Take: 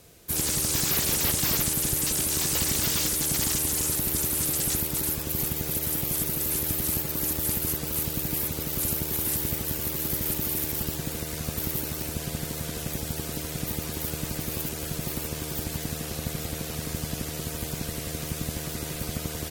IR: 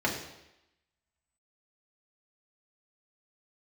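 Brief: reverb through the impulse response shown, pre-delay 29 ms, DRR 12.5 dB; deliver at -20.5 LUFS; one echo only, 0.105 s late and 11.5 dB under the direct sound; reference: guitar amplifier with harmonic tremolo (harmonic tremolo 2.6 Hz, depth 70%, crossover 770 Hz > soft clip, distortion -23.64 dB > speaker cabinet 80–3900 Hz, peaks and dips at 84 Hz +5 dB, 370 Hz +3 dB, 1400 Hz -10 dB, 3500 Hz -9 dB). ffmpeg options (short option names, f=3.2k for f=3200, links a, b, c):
-filter_complex "[0:a]aecho=1:1:105:0.266,asplit=2[a][b];[1:a]atrim=start_sample=2205,adelay=29[c];[b][c]afir=irnorm=-1:irlink=0,volume=-23dB[d];[a][d]amix=inputs=2:normalize=0,acrossover=split=770[e][f];[e]aeval=exprs='val(0)*(1-0.7/2+0.7/2*cos(2*PI*2.6*n/s))':c=same[g];[f]aeval=exprs='val(0)*(1-0.7/2-0.7/2*cos(2*PI*2.6*n/s))':c=same[h];[g][h]amix=inputs=2:normalize=0,asoftclip=threshold=-18.5dB,highpass=80,equalizer=f=84:t=q:w=4:g=5,equalizer=f=370:t=q:w=4:g=3,equalizer=f=1.4k:t=q:w=4:g=-10,equalizer=f=3.5k:t=q:w=4:g=-9,lowpass=f=3.9k:w=0.5412,lowpass=f=3.9k:w=1.3066,volume=17dB"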